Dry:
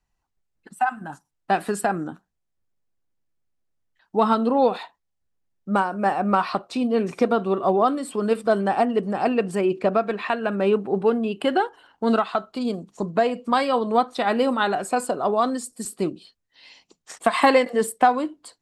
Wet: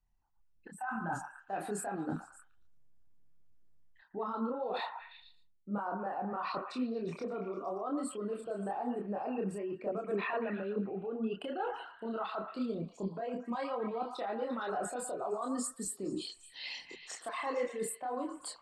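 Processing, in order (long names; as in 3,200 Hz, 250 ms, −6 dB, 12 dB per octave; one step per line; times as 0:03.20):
spectral envelope exaggerated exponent 1.5
automatic gain control gain up to 12 dB
brickwall limiter −11 dBFS, peak gain reduction 10 dB
reversed playback
downward compressor 8 to 1, threshold −32 dBFS, peak gain reduction 17 dB
reversed playback
echo through a band-pass that steps 115 ms, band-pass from 1,100 Hz, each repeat 0.7 octaves, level −5 dB
multi-voice chorus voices 4, 1.1 Hz, delay 28 ms, depth 4 ms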